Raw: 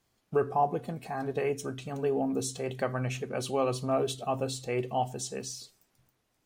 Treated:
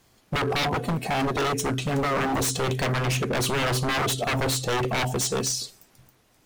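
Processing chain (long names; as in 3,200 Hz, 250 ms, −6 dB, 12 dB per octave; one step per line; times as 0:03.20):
in parallel at +1 dB: brickwall limiter −24.5 dBFS, peak gain reduction 9 dB
on the sum: wave folding −26.5 dBFS
level +7 dB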